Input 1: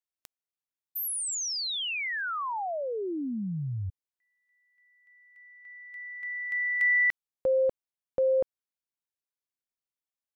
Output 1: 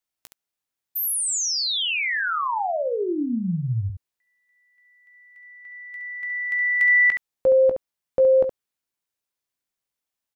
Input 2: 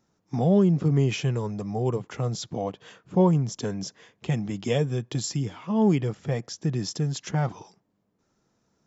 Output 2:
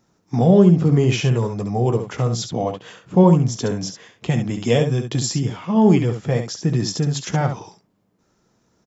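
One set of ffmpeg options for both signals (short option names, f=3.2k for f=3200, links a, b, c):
-af "aecho=1:1:17|69:0.282|0.422,volume=6.5dB"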